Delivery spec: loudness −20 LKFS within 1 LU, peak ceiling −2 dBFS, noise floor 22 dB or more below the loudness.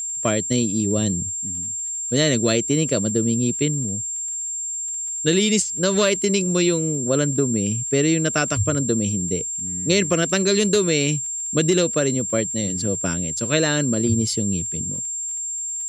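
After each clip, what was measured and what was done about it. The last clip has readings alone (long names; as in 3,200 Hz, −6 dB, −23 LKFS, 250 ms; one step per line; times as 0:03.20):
crackle rate 23 per second; interfering tone 7,400 Hz; level of the tone −25 dBFS; integrated loudness −20.5 LKFS; sample peak −4.5 dBFS; target loudness −20.0 LKFS
→ click removal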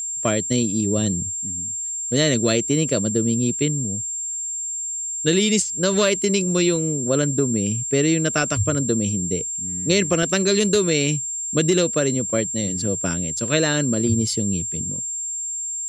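crackle rate 0.13 per second; interfering tone 7,400 Hz; level of the tone −25 dBFS
→ notch filter 7,400 Hz, Q 30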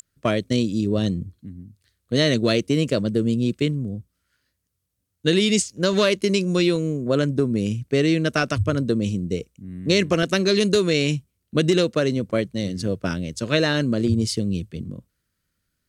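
interfering tone none found; integrated loudness −22.0 LKFS; sample peak −5.0 dBFS; target loudness −20.0 LKFS
→ level +2 dB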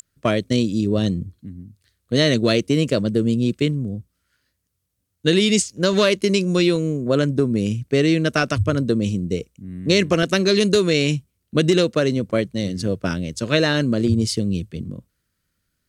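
integrated loudness −20.0 LKFS; sample peak −3.0 dBFS; background noise floor −74 dBFS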